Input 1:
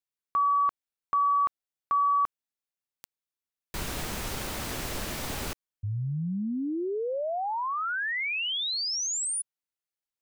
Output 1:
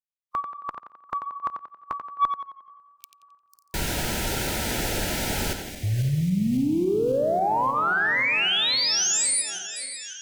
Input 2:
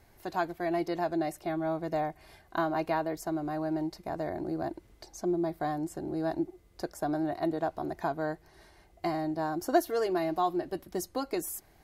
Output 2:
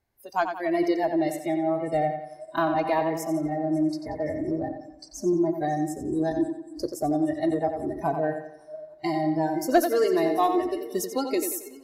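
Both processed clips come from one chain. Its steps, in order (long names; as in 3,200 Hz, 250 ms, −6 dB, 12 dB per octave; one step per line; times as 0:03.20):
feedback delay that plays each chunk backwards 274 ms, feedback 76%, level −13 dB
noise reduction from a noise print of the clip's start 24 dB
harmonic generator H 2 −23 dB, 5 −25 dB, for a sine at −13 dBFS
tape delay 89 ms, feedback 47%, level −7 dB, low-pass 5,600 Hz
level +4.5 dB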